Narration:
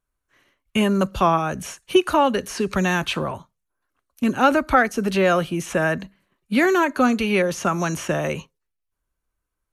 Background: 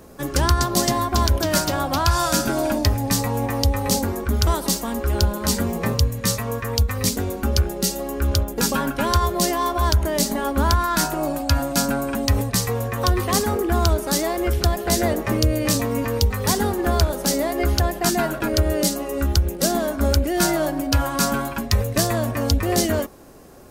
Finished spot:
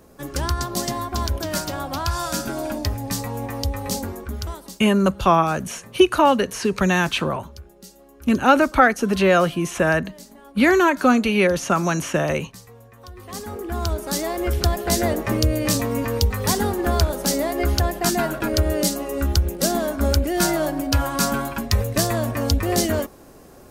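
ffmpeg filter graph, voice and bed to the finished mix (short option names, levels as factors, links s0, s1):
-filter_complex "[0:a]adelay=4050,volume=1.26[s0];[1:a]volume=6.31,afade=t=out:st=4.04:d=0.76:silence=0.149624,afade=t=in:st=13.13:d=1.49:silence=0.0841395[s1];[s0][s1]amix=inputs=2:normalize=0"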